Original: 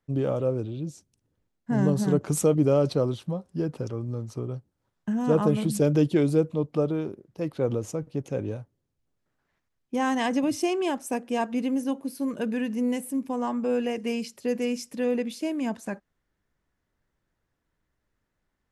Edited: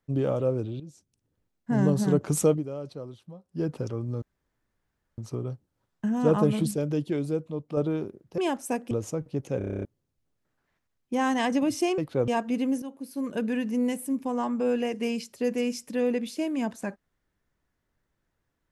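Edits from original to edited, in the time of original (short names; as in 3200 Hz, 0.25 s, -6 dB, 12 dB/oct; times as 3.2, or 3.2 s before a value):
0.8–1.77 fade in equal-power, from -13 dB
2.5–3.63 dip -14.5 dB, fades 0.13 s
4.22 insert room tone 0.96 s
5.75–6.81 gain -6.5 dB
7.42–7.72 swap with 10.79–11.32
8.39 stutter in place 0.03 s, 9 plays
11.86–12.44 fade in, from -12.5 dB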